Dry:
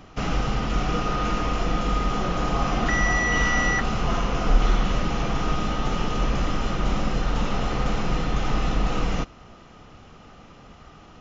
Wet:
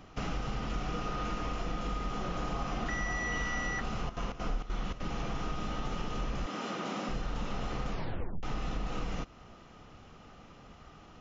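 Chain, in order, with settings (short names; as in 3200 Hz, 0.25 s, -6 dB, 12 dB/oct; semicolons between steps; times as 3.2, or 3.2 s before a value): 6.46–7.09 HPF 200 Hz 24 dB/oct; 7.9 tape stop 0.53 s; compressor 3:1, threshold -26 dBFS, peak gain reduction 11 dB; 3.98–5 step gate "xx.xxx.xxx." 198 bpm -12 dB; gain -6 dB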